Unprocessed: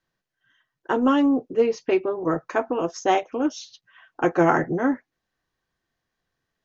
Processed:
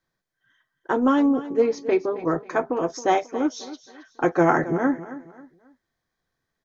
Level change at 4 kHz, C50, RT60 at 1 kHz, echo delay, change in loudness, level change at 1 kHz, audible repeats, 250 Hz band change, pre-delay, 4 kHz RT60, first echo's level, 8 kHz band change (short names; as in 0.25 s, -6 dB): -2.5 dB, none, none, 0.27 s, 0.0 dB, 0.0 dB, 3, 0.0 dB, none, none, -15.0 dB, n/a